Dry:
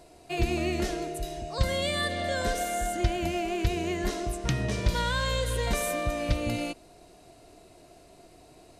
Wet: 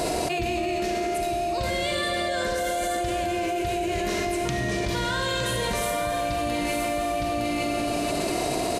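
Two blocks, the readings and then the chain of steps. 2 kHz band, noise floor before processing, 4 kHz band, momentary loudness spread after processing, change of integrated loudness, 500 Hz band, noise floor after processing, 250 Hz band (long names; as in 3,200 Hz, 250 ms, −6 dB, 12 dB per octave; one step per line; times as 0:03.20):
+4.5 dB, −54 dBFS, +4.0 dB, 1 LU, +3.0 dB, +6.0 dB, −27 dBFS, +4.5 dB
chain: low-shelf EQ 71 Hz −12 dB
on a send: single-tap delay 912 ms −9 dB
on the sum: four-comb reverb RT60 2.3 s, combs from 33 ms, DRR 1.5 dB
envelope flattener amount 100%
level −5.5 dB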